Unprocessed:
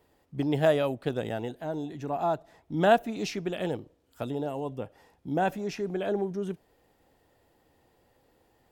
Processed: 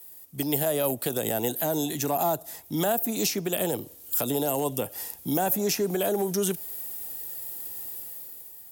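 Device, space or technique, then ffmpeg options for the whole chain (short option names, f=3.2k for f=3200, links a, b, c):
FM broadcast chain: -filter_complex "[0:a]highpass=51,dynaudnorm=f=110:g=13:m=10dB,acrossover=split=140|450|1200|6800[a][b][c][d][e];[a]acompressor=threshold=-43dB:ratio=4[f];[b]acompressor=threshold=-26dB:ratio=4[g];[c]acompressor=threshold=-21dB:ratio=4[h];[d]acompressor=threshold=-44dB:ratio=4[i];[e]acompressor=threshold=-57dB:ratio=4[j];[f][g][h][i][j]amix=inputs=5:normalize=0,aemphasis=mode=production:type=75fm,alimiter=limit=-17.5dB:level=0:latency=1:release=79,asoftclip=type=hard:threshold=-18.5dB,lowpass=f=15k:w=0.5412,lowpass=f=15k:w=1.3066,aemphasis=mode=production:type=75fm"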